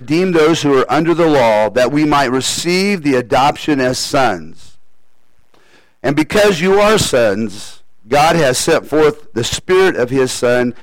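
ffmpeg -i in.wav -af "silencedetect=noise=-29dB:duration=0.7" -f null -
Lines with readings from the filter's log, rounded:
silence_start: 4.73
silence_end: 6.03 | silence_duration: 1.30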